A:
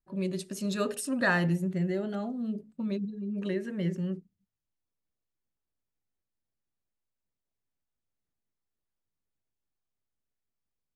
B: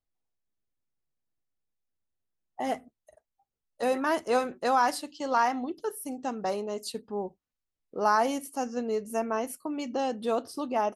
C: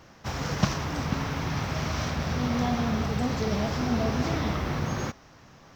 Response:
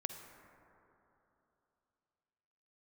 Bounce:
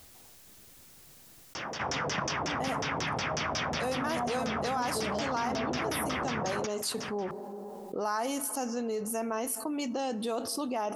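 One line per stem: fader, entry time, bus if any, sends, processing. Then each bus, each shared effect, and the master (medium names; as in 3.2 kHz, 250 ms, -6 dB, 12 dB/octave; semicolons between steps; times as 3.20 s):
mute
-6.5 dB, 0.00 s, bus A, send -18 dB, none
-4.0 dB, 1.55 s, bus A, no send, high-pass 330 Hz 6 dB/octave; band-stop 4.1 kHz, Q 6.3; LFO low-pass saw down 5.5 Hz 470–6700 Hz
bus A: 0.0 dB, high-pass 42 Hz; compression 1.5:1, threshold -40 dBFS, peak gain reduction 6 dB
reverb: on, RT60 3.1 s, pre-delay 43 ms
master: treble shelf 3.6 kHz +7 dB; level flattener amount 70%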